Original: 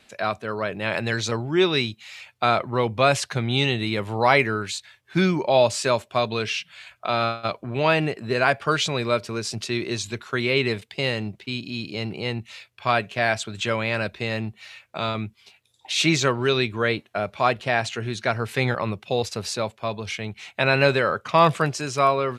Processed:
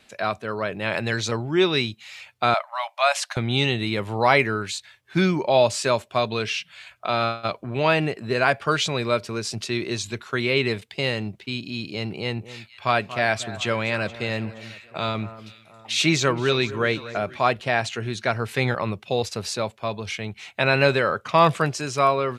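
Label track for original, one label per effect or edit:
2.540000	3.370000	brick-wall FIR high-pass 560 Hz
12.130000	17.380000	echo whose repeats swap between lows and highs 236 ms, split 1.7 kHz, feedback 62%, level -14 dB

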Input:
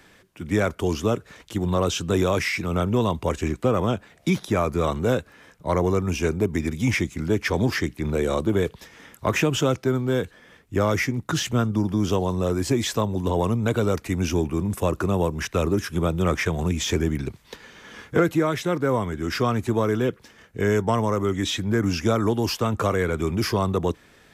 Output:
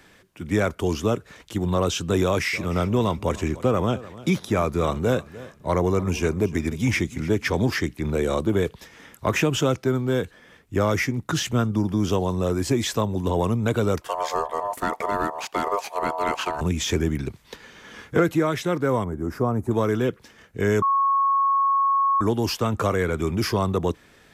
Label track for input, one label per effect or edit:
2.230000	7.550000	feedback delay 300 ms, feedback 33%, level -18 dB
14.010000	16.610000	ring modulator 810 Hz
19.040000	19.710000	FFT filter 890 Hz 0 dB, 3.2 kHz -24 dB, 10 kHz -6 dB
20.820000	22.210000	bleep 1.1 kHz -17 dBFS

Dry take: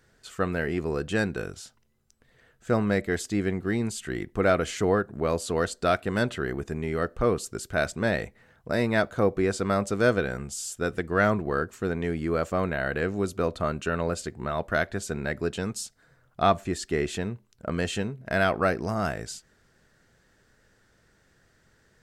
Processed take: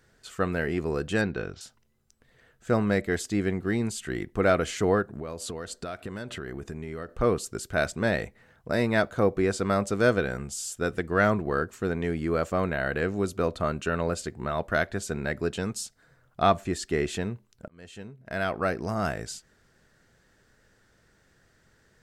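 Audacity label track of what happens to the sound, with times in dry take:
1.210000	1.610000	low-pass 5 kHz 24 dB/octave
5.090000	7.090000	compression 10:1, threshold -31 dBFS
17.680000	19.090000	fade in

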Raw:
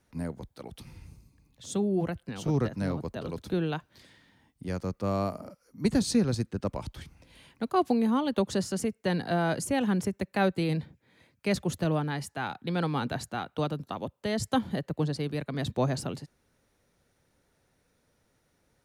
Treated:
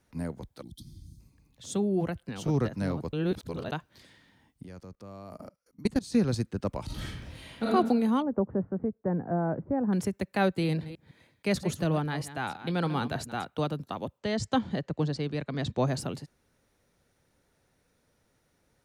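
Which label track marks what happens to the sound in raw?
0.620000	1.200000	time-frequency box 350–3100 Hz -25 dB
3.130000	3.720000	reverse
4.630000	6.140000	level held to a coarse grid steps of 22 dB
6.850000	7.670000	reverb throw, RT60 1.1 s, DRR -8 dB
8.220000	9.930000	Gaussian low-pass sigma 7.4 samples
10.480000	13.450000	chunks repeated in reverse 158 ms, level -13 dB
14.180000	15.870000	low-pass 7.5 kHz 24 dB/octave

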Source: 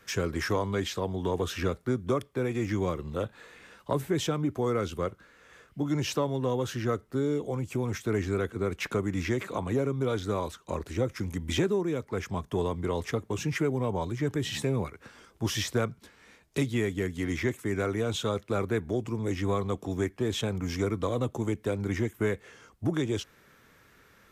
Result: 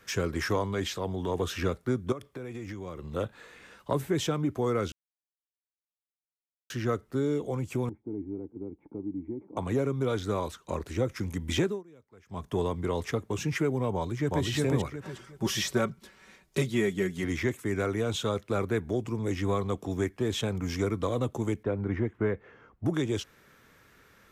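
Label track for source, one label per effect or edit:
0.650000	1.360000	transient shaper attack -6 dB, sustain +1 dB
2.120000	3.130000	compression, threshold -35 dBFS
4.920000	6.700000	mute
7.890000	9.570000	cascade formant filter u
11.630000	12.460000	dip -23.5 dB, fades 0.20 s
13.950000	14.450000	echo throw 360 ms, feedback 30%, level -0.5 dB
15.020000	17.240000	comb 5.3 ms, depth 62%
21.630000	22.860000	low-pass 1.7 kHz

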